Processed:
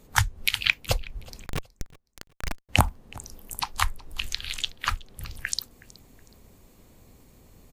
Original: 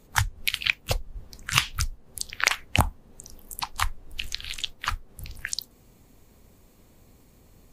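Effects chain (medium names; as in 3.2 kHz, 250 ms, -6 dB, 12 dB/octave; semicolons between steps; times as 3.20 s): 1.46–2.69 s: Schmitt trigger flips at -16 dBFS; on a send: feedback delay 370 ms, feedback 33%, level -22.5 dB; on the sum: trim +1.5 dB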